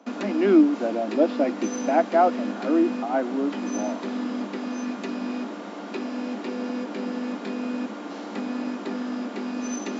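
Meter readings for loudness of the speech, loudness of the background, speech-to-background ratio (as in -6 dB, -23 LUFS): -23.5 LUFS, -31.0 LUFS, 7.5 dB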